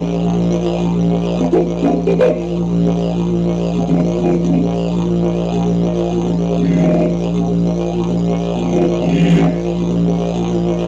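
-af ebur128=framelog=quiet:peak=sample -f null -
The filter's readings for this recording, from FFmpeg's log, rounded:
Integrated loudness:
  I:         -15.6 LUFS
  Threshold: -25.6 LUFS
Loudness range:
  LRA:         0.8 LU
  Threshold: -35.7 LUFS
  LRA low:   -16.0 LUFS
  LRA high:  -15.2 LUFS
Sample peak:
  Peak:       -5.6 dBFS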